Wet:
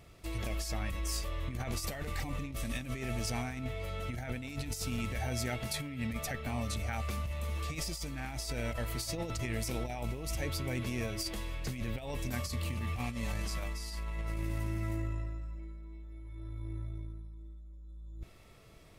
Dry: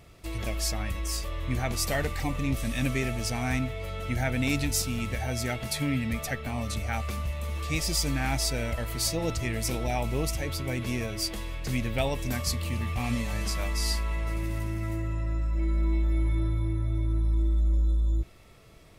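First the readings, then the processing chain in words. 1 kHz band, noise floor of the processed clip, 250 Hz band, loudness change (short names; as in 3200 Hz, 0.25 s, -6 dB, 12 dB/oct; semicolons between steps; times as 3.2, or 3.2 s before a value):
-7.0 dB, -54 dBFS, -8.0 dB, -8.0 dB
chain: negative-ratio compressor -30 dBFS, ratio -0.5; gain -6 dB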